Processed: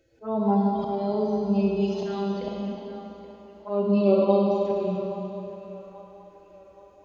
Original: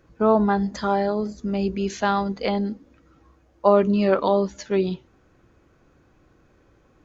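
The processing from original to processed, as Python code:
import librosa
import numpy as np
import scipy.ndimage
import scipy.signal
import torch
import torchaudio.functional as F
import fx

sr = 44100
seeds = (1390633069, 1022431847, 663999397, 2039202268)

y = fx.hpss_only(x, sr, part='harmonic')
y = fx.low_shelf(y, sr, hz=100.0, db=-9.0)
y = fx.auto_swell(y, sr, attack_ms=327.0)
y = fx.env_phaser(y, sr, low_hz=180.0, high_hz=1700.0, full_db=-28.0)
y = fx.echo_wet_bandpass(y, sr, ms=827, feedback_pct=47, hz=1200.0, wet_db=-12.5)
y = fx.rev_schroeder(y, sr, rt60_s=3.0, comb_ms=33, drr_db=-1.5)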